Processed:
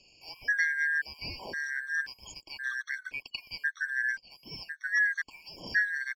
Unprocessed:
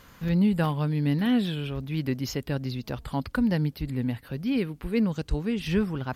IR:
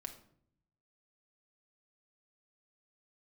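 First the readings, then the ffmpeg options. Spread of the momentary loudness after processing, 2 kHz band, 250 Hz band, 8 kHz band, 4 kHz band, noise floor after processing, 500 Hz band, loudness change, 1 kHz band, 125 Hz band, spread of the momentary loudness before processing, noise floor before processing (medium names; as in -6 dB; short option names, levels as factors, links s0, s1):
15 LU, +12.5 dB, -31.5 dB, -2.0 dB, -3.0 dB, -63 dBFS, -21.5 dB, -3.5 dB, -15.0 dB, -29.0 dB, 8 LU, -53 dBFS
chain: -filter_complex "[0:a]afftfilt=real='real(if(lt(b,272),68*(eq(floor(b/68),0)*2+eq(floor(b/68),1)*0+eq(floor(b/68),2)*3+eq(floor(b/68),3)*1)+mod(b,68),b),0)':imag='imag(if(lt(b,272),68*(eq(floor(b/68),0)*2+eq(floor(b/68),1)*0+eq(floor(b/68),2)*3+eq(floor(b/68),3)*1)+mod(b,68),b),0)':win_size=2048:overlap=0.75,aresample=16000,aresample=44100,acrossover=split=710|2400[s0][s1][s2];[s1]aeval=exprs='sgn(val(0))*max(abs(val(0))-0.00266,0)':c=same[s3];[s0][s3][s2]amix=inputs=3:normalize=0,afftfilt=real='re*gt(sin(2*PI*0.95*pts/sr)*(1-2*mod(floor(b*sr/1024/1100),2)),0)':imag='im*gt(sin(2*PI*0.95*pts/sr)*(1-2*mod(floor(b*sr/1024/1100),2)),0)':win_size=1024:overlap=0.75,volume=0.794"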